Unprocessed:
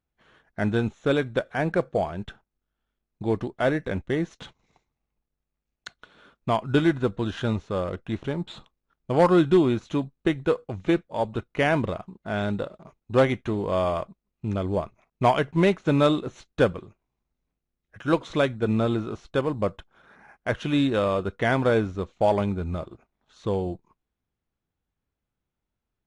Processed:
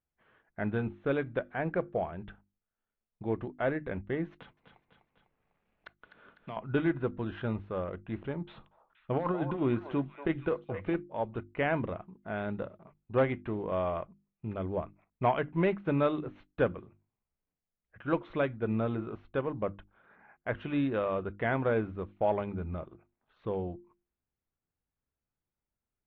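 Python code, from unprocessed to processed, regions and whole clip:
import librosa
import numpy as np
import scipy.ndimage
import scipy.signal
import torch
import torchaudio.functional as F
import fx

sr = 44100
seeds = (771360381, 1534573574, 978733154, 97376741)

y = fx.chain(x, sr, fx.echo_feedback(ms=250, feedback_pct=31, wet_db=-11.5),
    fx.band_squash(depth_pct=70), at=(4.32, 6.57))
y = fx.chain(y, sr, fx.over_compress(threshold_db=-20.0, ratio=-0.5),
    fx.echo_stepped(ms=237, hz=740.0, octaves=1.4, feedback_pct=70, wet_db=-4.5), at=(8.47, 10.96))
y = scipy.signal.sosfilt(scipy.signal.butter(4, 2700.0, 'lowpass', fs=sr, output='sos'), y)
y = fx.hum_notches(y, sr, base_hz=50, count=7)
y = y * 10.0 ** (-7.0 / 20.0)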